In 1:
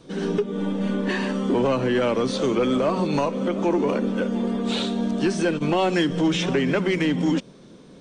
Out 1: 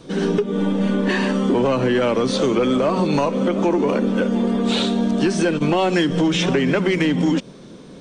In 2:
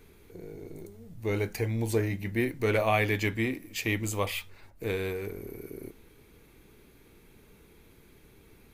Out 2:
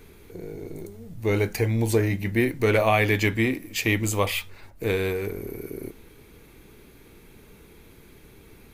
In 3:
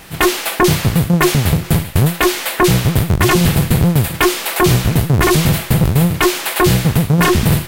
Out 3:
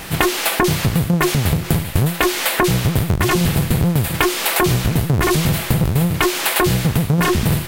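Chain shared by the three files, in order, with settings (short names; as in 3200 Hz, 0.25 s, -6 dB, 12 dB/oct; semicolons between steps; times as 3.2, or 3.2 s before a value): compressor 6:1, threshold -21 dBFS; gain +6.5 dB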